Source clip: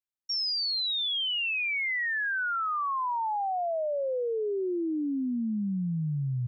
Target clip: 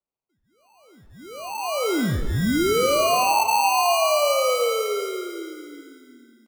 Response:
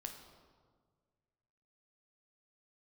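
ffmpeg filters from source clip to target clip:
-filter_complex "[0:a]highpass=frequency=360:width_type=q:width=0.5412,highpass=frequency=360:width_type=q:width=1.307,lowpass=frequency=2100:width_type=q:width=0.5176,lowpass=frequency=2100:width_type=q:width=0.7071,lowpass=frequency=2100:width_type=q:width=1.932,afreqshift=100,acrusher=samples=25:mix=1:aa=0.000001,aecho=1:1:370|740|1110:0.141|0.0565|0.0226,asplit=2[link_01][link_02];[1:a]atrim=start_sample=2205,lowshelf=frequency=120:gain=-12[link_03];[link_02][link_03]afir=irnorm=-1:irlink=0,volume=5.5dB[link_04];[link_01][link_04]amix=inputs=2:normalize=0,volume=3.5dB"

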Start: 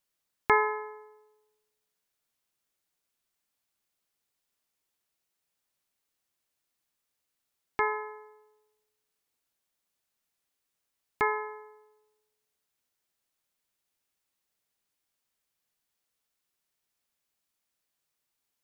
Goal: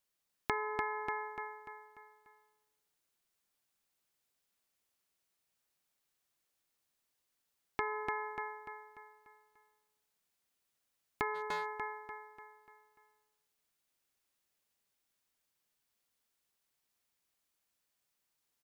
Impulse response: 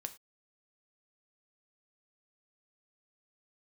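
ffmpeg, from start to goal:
-filter_complex "[0:a]aecho=1:1:294|588|882|1176|1470|1764:0.631|0.278|0.122|0.0537|0.0236|0.0104,asplit=3[link_01][link_02][link_03];[link_01]afade=type=out:start_time=11.34:duration=0.02[link_04];[link_02]asoftclip=type=hard:threshold=-29dB,afade=type=in:start_time=11.34:duration=0.02,afade=type=out:start_time=11.74:duration=0.02[link_05];[link_03]afade=type=in:start_time=11.74:duration=0.02[link_06];[link_04][link_05][link_06]amix=inputs=3:normalize=0,acompressor=threshold=-30dB:ratio=6,volume=-2dB"

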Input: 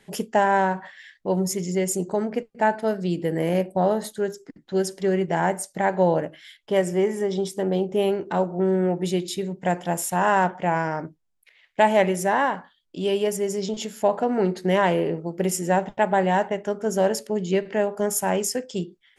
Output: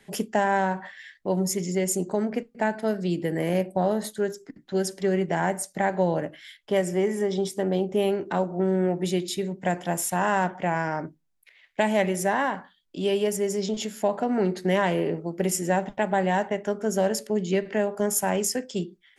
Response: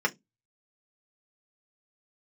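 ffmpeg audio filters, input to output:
-filter_complex "[0:a]acrossover=split=270|3000[link_01][link_02][link_03];[link_02]acompressor=threshold=-23dB:ratio=2[link_04];[link_01][link_04][link_03]amix=inputs=3:normalize=0,asplit=2[link_05][link_06];[link_06]asuperstop=centerf=5100:order=20:qfactor=1.2[link_07];[1:a]atrim=start_sample=2205[link_08];[link_07][link_08]afir=irnorm=-1:irlink=0,volume=-24dB[link_09];[link_05][link_09]amix=inputs=2:normalize=0"

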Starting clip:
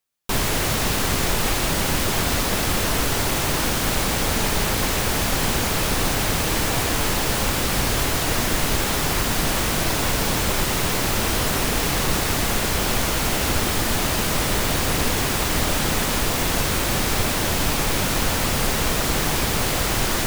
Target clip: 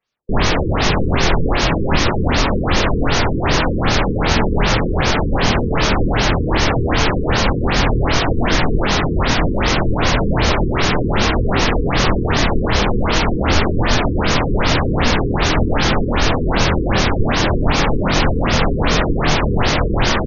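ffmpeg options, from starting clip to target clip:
ffmpeg -i in.wav -filter_complex "[0:a]asplit=2[link_01][link_02];[link_02]adelay=25,volume=-4dB[link_03];[link_01][link_03]amix=inputs=2:normalize=0,afftfilt=real='re*lt(b*sr/1024,470*pow(6900/470,0.5+0.5*sin(2*PI*2.6*pts/sr)))':imag='im*lt(b*sr/1024,470*pow(6900/470,0.5+0.5*sin(2*PI*2.6*pts/sr)))':win_size=1024:overlap=0.75,volume=6.5dB" out.wav

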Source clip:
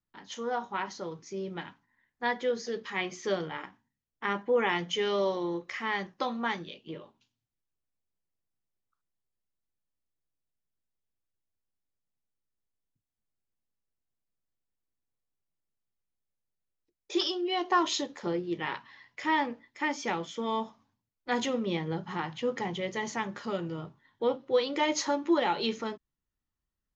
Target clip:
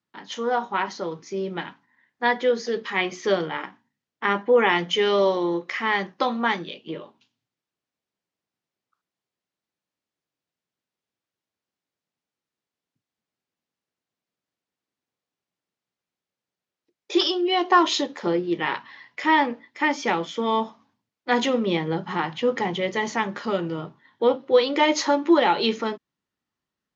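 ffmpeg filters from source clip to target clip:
ffmpeg -i in.wav -af "highpass=170,lowpass=5400,volume=8.5dB" out.wav

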